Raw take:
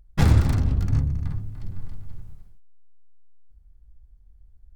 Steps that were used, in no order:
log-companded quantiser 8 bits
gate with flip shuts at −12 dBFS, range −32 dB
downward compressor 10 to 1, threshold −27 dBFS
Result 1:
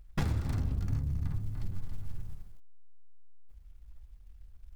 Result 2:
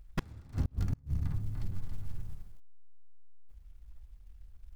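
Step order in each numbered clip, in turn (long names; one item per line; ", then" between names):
log-companded quantiser, then downward compressor, then gate with flip
log-companded quantiser, then gate with flip, then downward compressor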